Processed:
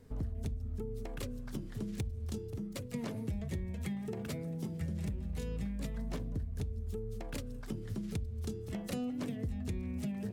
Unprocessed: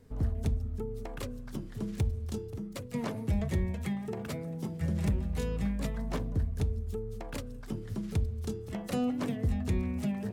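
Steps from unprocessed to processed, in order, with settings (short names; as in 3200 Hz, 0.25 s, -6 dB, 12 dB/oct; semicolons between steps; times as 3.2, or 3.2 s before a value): dynamic EQ 1000 Hz, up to -6 dB, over -51 dBFS, Q 0.83; compressor, threshold -34 dBFS, peak gain reduction 10 dB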